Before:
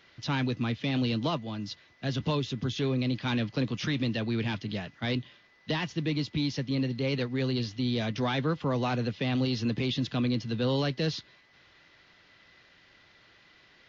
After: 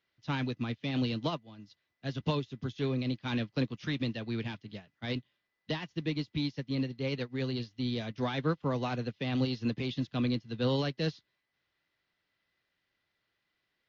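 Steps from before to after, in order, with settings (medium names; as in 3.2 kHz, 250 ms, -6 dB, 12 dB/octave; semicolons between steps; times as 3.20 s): upward expansion 2.5:1, over -40 dBFS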